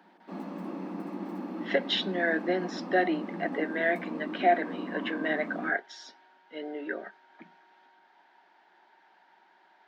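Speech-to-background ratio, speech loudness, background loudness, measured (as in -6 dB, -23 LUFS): 7.5 dB, -30.5 LUFS, -38.0 LUFS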